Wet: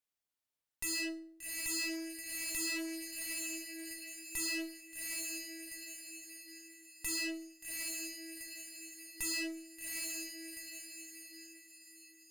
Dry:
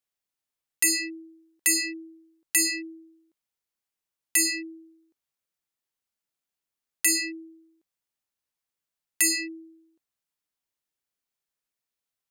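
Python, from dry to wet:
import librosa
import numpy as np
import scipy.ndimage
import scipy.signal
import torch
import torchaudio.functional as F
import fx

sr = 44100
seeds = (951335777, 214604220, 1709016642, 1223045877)

y = fx.echo_diffused(x, sr, ms=784, feedback_pct=45, wet_db=-10.0)
y = fx.tube_stage(y, sr, drive_db=36.0, bias=0.75)
y = fx.rev_fdn(y, sr, rt60_s=0.48, lf_ratio=1.55, hf_ratio=0.8, size_ms=20.0, drr_db=9.0)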